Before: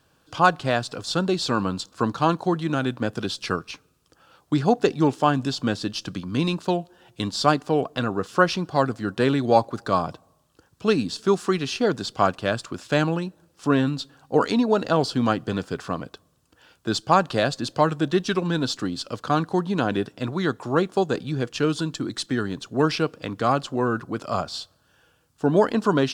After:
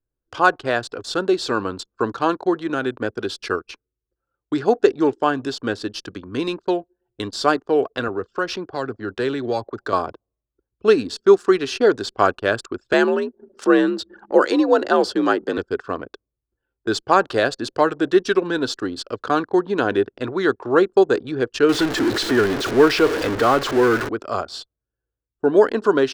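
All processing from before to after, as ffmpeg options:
ffmpeg -i in.wav -filter_complex "[0:a]asettb=1/sr,asplit=3[link_01][link_02][link_03];[link_01]atrim=end=8.084[link_04];[link_02]atrim=start=8.08:end=9.93,asetpts=PTS-STARTPTS,afade=type=in:duration=0.004:curve=qsin,afade=type=out:start_time=1.846:duration=0.004:curve=qsin,equalizer=frequency=9400:width_type=o:width=0.29:gain=-7,acrossover=split=160|3000[link_05][link_06][link_07];[link_06]acompressor=threshold=-28dB:ratio=2:attack=3.2:release=140:knee=2.83:detection=peak[link_08];[link_05][link_08][link_07]amix=inputs=3:normalize=0[link_09];[link_03]atrim=start=9.926[link_10];[link_04][link_09]acrossfade=duration=0.004:curve1=hsin:curve2=qsin[link_11];[link_11][link_10]acrossfade=duration=0.004:curve1=qsin:curve2=hsin,asettb=1/sr,asplit=3[link_12][link_13][link_14];[link_12]atrim=end=12.934[link_15];[link_13]atrim=start=12.93:end=15.58,asetpts=PTS-STARTPTS,afade=type=in:duration=0.004:curve=qsin,afade=type=out:start_time=2.646:duration=0.004:curve=qsin,afreqshift=59,acompressor=mode=upward:threshold=-29dB:ratio=2.5:attack=3.2:release=140:knee=2.83:detection=peak[link_16];[link_14]atrim=start=15.576[link_17];[link_15][link_16]acrossfade=duration=0.004:curve1=hsin:curve2=qsin[link_18];[link_18][link_17]acrossfade=duration=0.004:curve1=qsin:curve2=hsin,asettb=1/sr,asplit=3[link_19][link_20][link_21];[link_19]atrim=end=21.694[link_22];[link_20]atrim=start=21.69:end=24.09,asetpts=PTS-STARTPTS,afade=type=in:duration=0.004:curve=qsin,afade=type=out:start_time=2.396:duration=0.004:curve=qsin,aeval=exprs='val(0)+0.5*0.0841*sgn(val(0))':channel_layout=same,acrossover=split=6100[link_23][link_24];[link_24]acompressor=threshold=-39dB:ratio=4:attack=1:release=60[link_25];[link_23][link_25]amix=inputs=2:normalize=0[link_26];[link_21]atrim=start=24.086[link_27];[link_22][link_26]acrossfade=duration=0.004:curve1=hsin:curve2=qsin[link_28];[link_28][link_27]acrossfade=duration=0.004:curve1=qsin:curve2=hsin,anlmdn=1.58,equalizer=frequency=160:width_type=o:width=0.67:gain=-12,equalizer=frequency=400:width_type=o:width=0.67:gain=9,equalizer=frequency=1600:width_type=o:width=0.67:gain=6,dynaudnorm=framelen=610:gausssize=9:maxgain=11.5dB,volume=-1dB" out.wav

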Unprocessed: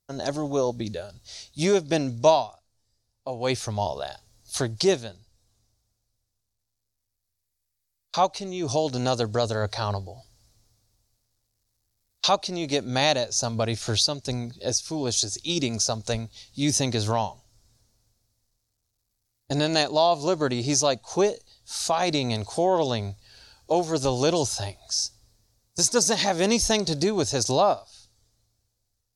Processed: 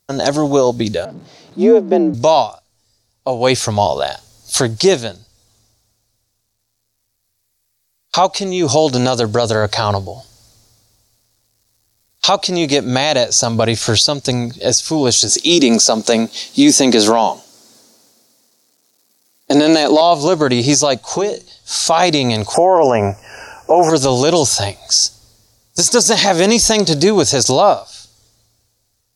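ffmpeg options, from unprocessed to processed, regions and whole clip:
ffmpeg -i in.wav -filter_complex "[0:a]asettb=1/sr,asplit=3[link_01][link_02][link_03];[link_01]atrim=end=1.054[link_04];[link_02]atrim=start=1.05:end=2.14,asetpts=PTS-STARTPTS,afade=type=in:duration=0.004:curve=qsin,afade=type=out:start_time=1.086:duration=0.004:curve=qsin,aeval=exprs='val(0)+0.5*0.0119*sgn(val(0))':channel_layout=same,bandpass=frequency=260:width_type=q:width=0.86,afreqshift=51[link_05];[link_03]atrim=start=2.136[link_06];[link_04][link_05]acrossfade=duration=0.004:curve1=hsin:curve2=qsin[link_07];[link_07][link_06]acrossfade=duration=0.004:curve1=qsin:curve2=hsin,asettb=1/sr,asplit=3[link_08][link_09][link_10];[link_08]atrim=end=15.294[link_11];[link_09]atrim=start=15.29:end=20.01,asetpts=PTS-STARTPTS,afade=type=in:duration=0.004:curve=qsin,afade=type=out:start_time=4.716:duration=0.004:curve=qsin,highpass=frequency=230:width=0.5412,highpass=frequency=230:width=1.3066,lowshelf=frequency=400:gain=7.5,acontrast=38[link_12];[link_10]atrim=start=20.006[link_13];[link_11][link_12]acrossfade=duration=0.004:curve1=hsin:curve2=qsin[link_14];[link_14][link_13]acrossfade=duration=0.004:curve1=qsin:curve2=hsin,asettb=1/sr,asplit=3[link_15][link_16][link_17];[link_15]atrim=end=21.094[link_18];[link_16]atrim=start=21.09:end=21.87,asetpts=PTS-STARTPTS,afade=type=in:duration=0.004:curve=qsin,afade=type=out:start_time=0.776:duration=0.004:curve=qsin,lowpass=9300,bandreject=frequency=60:width_type=h:width=6,bandreject=frequency=120:width_type=h:width=6,bandreject=frequency=180:width_type=h:width=6,bandreject=frequency=240:width_type=h:width=6,bandreject=frequency=300:width_type=h:width=6,bandreject=frequency=360:width_type=h:width=6,acompressor=threshold=-27dB:ratio=6:attack=3.2:release=140:knee=1:detection=peak[link_19];[link_17]atrim=start=21.866[link_20];[link_18][link_19]acrossfade=duration=0.004:curve1=hsin:curve2=qsin[link_21];[link_21][link_20]acrossfade=duration=0.004:curve1=qsin:curve2=hsin,asettb=1/sr,asplit=3[link_22][link_23][link_24];[link_22]atrim=end=22.544[link_25];[link_23]atrim=start=22.54:end=23.9,asetpts=PTS-STARTPTS,afade=type=in:duration=0.004:curve=qsin,afade=type=out:start_time=1.356:duration=0.004:curve=qsin,asuperstop=centerf=3800:order=20:qfactor=2.1,equalizer=frequency=790:width=0.4:gain=12.5[link_26];[link_24]atrim=start=23.896[link_27];[link_25][link_26]acrossfade=duration=0.004:curve1=hsin:curve2=qsin[link_28];[link_28][link_27]acrossfade=duration=0.004:curve1=qsin:curve2=hsin,lowshelf=frequency=89:gain=-10.5,alimiter=level_in=15.5dB:limit=-1dB:release=50:level=0:latency=1,volume=-1dB" out.wav

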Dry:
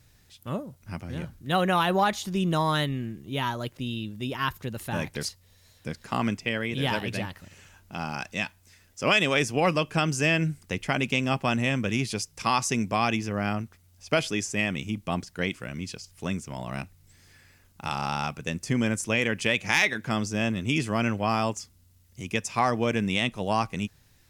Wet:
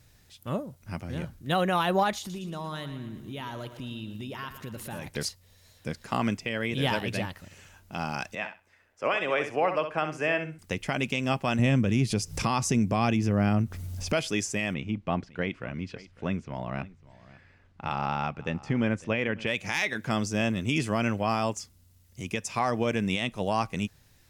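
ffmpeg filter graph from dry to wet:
ffmpeg -i in.wav -filter_complex "[0:a]asettb=1/sr,asplit=3[link_01][link_02][link_03];[link_01]atrim=end=2.184[link_04];[link_02]atrim=start=2.18:end=5.06,asetpts=PTS-STARTPTS,afade=type=in:duration=0.004:curve=qsin,afade=type=out:start_time=2.876:duration=0.004:curve=qsin,acompressor=threshold=-34dB:ratio=6:attack=3.2:release=140:knee=1:detection=peak,aecho=1:1:115|230|345|460|575|690:0.282|0.147|0.0762|0.0396|0.0206|0.0107,atrim=end_sample=127008[link_05];[link_03]atrim=start=5.056[link_06];[link_04][link_05]acrossfade=duration=0.004:curve1=hsin:curve2=qsin[link_07];[link_07][link_06]acrossfade=duration=0.004:curve1=qsin:curve2=hsin,asettb=1/sr,asplit=3[link_08][link_09][link_10];[link_08]atrim=end=8.354[link_11];[link_09]atrim=start=8.35:end=10.59,asetpts=PTS-STARTPTS,afade=type=in:duration=0.004:curve=qsin,afade=type=out:start_time=2.236:duration=0.004:curve=qsin,acrossover=split=380 2400:gain=0.2 1 0.112[link_12][link_13][link_14];[link_12][link_13][link_14]amix=inputs=3:normalize=0,aecho=1:1:64|128|192:0.355|0.0674|0.0128,atrim=end_sample=98784[link_15];[link_10]atrim=start=10.586[link_16];[link_11][link_15]acrossfade=duration=0.004:curve1=hsin:curve2=qsin[link_17];[link_17][link_16]acrossfade=duration=0.004:curve1=qsin:curve2=hsin,asettb=1/sr,asplit=3[link_18][link_19][link_20];[link_18]atrim=end=11.594[link_21];[link_19]atrim=start=11.59:end=14.13,asetpts=PTS-STARTPTS,afade=type=in:duration=0.004:curve=qsin,afade=type=out:start_time=2.536:duration=0.004:curve=qsin,lowshelf=frequency=390:gain=11,acompressor=mode=upward:threshold=-23dB:ratio=2.5:attack=3.2:release=140:knee=2.83:detection=peak[link_22];[link_20]atrim=start=14.126[link_23];[link_21][link_22]acrossfade=duration=0.004:curve1=hsin:curve2=qsin[link_24];[link_24][link_23]acrossfade=duration=0.004:curve1=qsin:curve2=hsin,asettb=1/sr,asplit=3[link_25][link_26][link_27];[link_25]atrim=end=14.744[link_28];[link_26]atrim=start=14.74:end=19.47,asetpts=PTS-STARTPTS,afade=type=in:duration=0.004:curve=qsin,afade=type=out:start_time=4.726:duration=0.004:curve=qsin,lowpass=2600,aecho=1:1:551:0.0944,atrim=end_sample=208593[link_29];[link_27]atrim=start=19.466[link_30];[link_28][link_29]acrossfade=duration=0.004:curve1=hsin:curve2=qsin[link_31];[link_31][link_30]acrossfade=duration=0.004:curve1=qsin:curve2=hsin,alimiter=limit=-15.5dB:level=0:latency=1:release=155,equalizer=frequency=600:width_type=o:width=0.77:gain=2" out.wav

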